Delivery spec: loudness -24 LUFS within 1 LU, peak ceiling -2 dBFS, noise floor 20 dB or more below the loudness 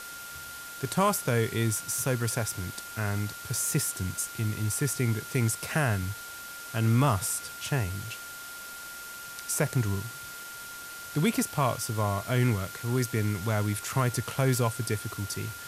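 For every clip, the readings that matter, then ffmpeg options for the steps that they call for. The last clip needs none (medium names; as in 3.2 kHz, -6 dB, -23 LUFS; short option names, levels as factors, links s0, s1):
steady tone 1.4 kHz; tone level -42 dBFS; noise floor -42 dBFS; noise floor target -50 dBFS; loudness -29.5 LUFS; peak level -12.5 dBFS; loudness target -24.0 LUFS
-> -af "bandreject=f=1400:w=30"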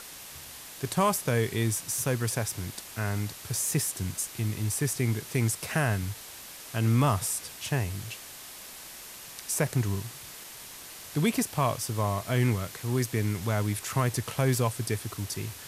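steady tone not found; noise floor -45 dBFS; noise floor target -49 dBFS
-> -af "afftdn=nr=6:nf=-45"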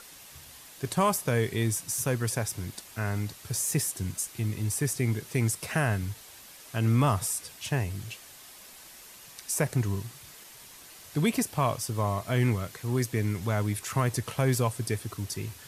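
noise floor -50 dBFS; loudness -29.0 LUFS; peak level -13.0 dBFS; loudness target -24.0 LUFS
-> -af "volume=1.78"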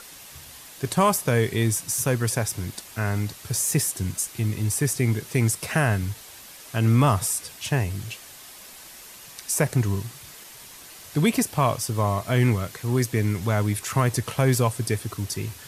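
loudness -24.0 LUFS; peak level -8.0 dBFS; noise floor -45 dBFS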